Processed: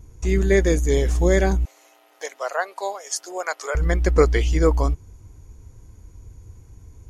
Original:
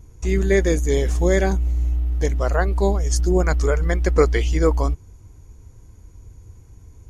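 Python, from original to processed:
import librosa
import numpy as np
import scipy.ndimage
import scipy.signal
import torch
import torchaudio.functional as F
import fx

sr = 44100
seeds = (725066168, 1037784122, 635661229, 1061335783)

y = fx.highpass(x, sr, hz=580.0, slope=24, at=(1.65, 3.75))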